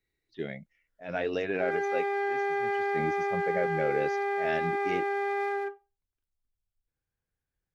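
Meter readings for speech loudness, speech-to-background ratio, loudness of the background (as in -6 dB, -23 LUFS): -34.5 LUFS, -4.5 dB, -30.0 LUFS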